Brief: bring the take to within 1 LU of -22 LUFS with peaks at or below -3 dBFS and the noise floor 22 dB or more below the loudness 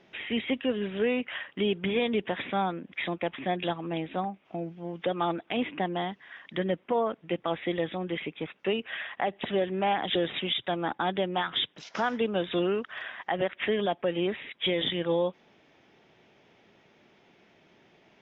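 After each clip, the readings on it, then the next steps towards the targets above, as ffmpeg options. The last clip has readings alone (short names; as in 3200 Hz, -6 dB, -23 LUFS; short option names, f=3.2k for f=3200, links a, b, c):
loudness -30.5 LUFS; peak -17.0 dBFS; loudness target -22.0 LUFS
-> -af "volume=8.5dB"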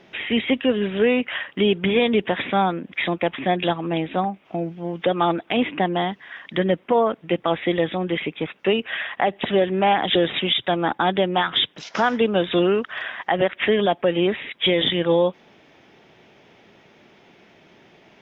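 loudness -22.0 LUFS; peak -8.5 dBFS; noise floor -55 dBFS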